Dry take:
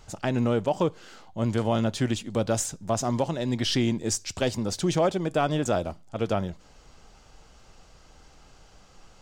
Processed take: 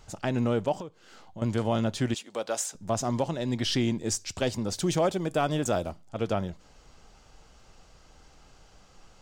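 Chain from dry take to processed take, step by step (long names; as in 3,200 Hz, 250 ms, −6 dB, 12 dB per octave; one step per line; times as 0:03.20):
0:00.79–0:01.42: downward compressor 4 to 1, threshold −38 dBFS, peak gain reduction 15 dB
0:02.14–0:02.75: high-pass filter 500 Hz 12 dB per octave
0:04.76–0:05.90: high-shelf EQ 10,000 Hz +11 dB
level −2 dB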